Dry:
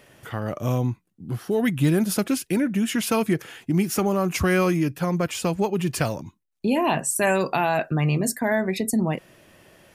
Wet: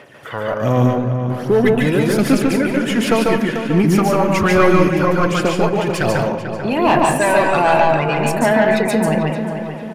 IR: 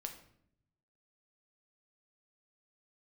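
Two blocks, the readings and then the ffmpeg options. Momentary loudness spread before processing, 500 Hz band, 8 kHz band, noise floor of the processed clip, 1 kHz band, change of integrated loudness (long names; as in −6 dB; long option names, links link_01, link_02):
8 LU, +10.0 dB, 0.0 dB, −27 dBFS, +10.5 dB, +7.5 dB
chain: -filter_complex "[0:a]aphaser=in_gain=1:out_gain=1:delay=2.1:decay=0.52:speed=1.3:type=sinusoidal,highpass=63,equalizer=frequency=82:width_type=o:width=0.77:gain=-4.5,asplit=2[link_01][link_02];[link_02]highpass=frequency=720:poles=1,volume=17dB,asoftclip=type=tanh:threshold=-4.5dB[link_03];[link_01][link_03]amix=inputs=2:normalize=0,lowpass=frequency=1800:poles=1,volume=-6dB,lowshelf=frequency=160:gain=6,asplit=2[link_04][link_05];[link_05]adelay=442,lowpass=frequency=2700:poles=1,volume=-8.5dB,asplit=2[link_06][link_07];[link_07]adelay=442,lowpass=frequency=2700:poles=1,volume=0.5,asplit=2[link_08][link_09];[link_09]adelay=442,lowpass=frequency=2700:poles=1,volume=0.5,asplit=2[link_10][link_11];[link_11]adelay=442,lowpass=frequency=2700:poles=1,volume=0.5,asplit=2[link_12][link_13];[link_13]adelay=442,lowpass=frequency=2700:poles=1,volume=0.5,asplit=2[link_14][link_15];[link_15]adelay=442,lowpass=frequency=2700:poles=1,volume=0.5[link_16];[link_04][link_06][link_08][link_10][link_12][link_14][link_16]amix=inputs=7:normalize=0,asplit=2[link_17][link_18];[1:a]atrim=start_sample=2205,adelay=144[link_19];[link_18][link_19]afir=irnorm=-1:irlink=0,volume=2dB[link_20];[link_17][link_20]amix=inputs=2:normalize=0,volume=-1dB"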